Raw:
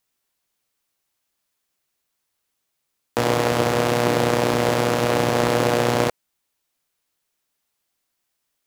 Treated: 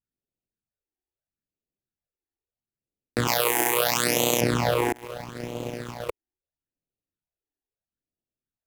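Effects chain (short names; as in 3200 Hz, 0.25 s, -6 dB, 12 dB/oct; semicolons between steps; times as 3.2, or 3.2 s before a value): Wiener smoothing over 41 samples; 4.92–6.09 expander -9 dBFS; phaser stages 8, 0.76 Hz, lowest notch 160–1600 Hz; 3.27–4.41 RIAA curve recording; in parallel at -4 dB: bit-crush 6-bit; on the sum: gain -3.5 dB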